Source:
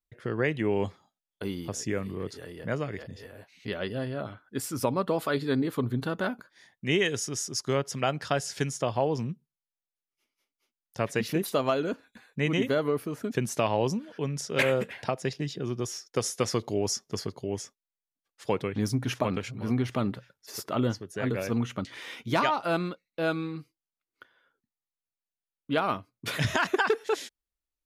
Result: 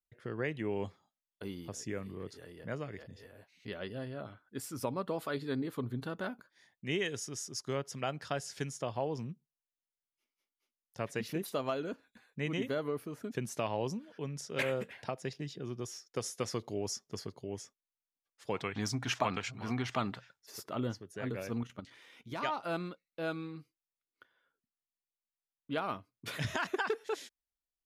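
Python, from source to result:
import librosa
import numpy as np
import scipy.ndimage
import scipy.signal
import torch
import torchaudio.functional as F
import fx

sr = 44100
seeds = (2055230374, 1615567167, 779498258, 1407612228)

y = fx.spec_box(x, sr, start_s=18.55, length_s=1.84, low_hz=630.0, high_hz=8600.0, gain_db=9)
y = fx.level_steps(y, sr, step_db=10, at=(21.63, 22.43))
y = y * librosa.db_to_amplitude(-8.5)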